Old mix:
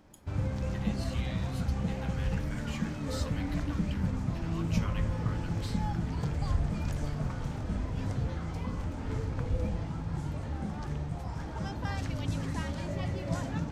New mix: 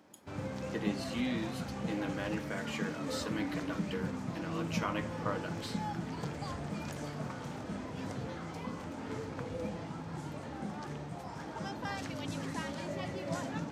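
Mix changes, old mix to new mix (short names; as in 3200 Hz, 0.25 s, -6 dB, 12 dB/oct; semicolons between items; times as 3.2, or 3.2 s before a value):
speech: remove passive tone stack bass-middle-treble 10-0-10; master: add HPF 210 Hz 12 dB/oct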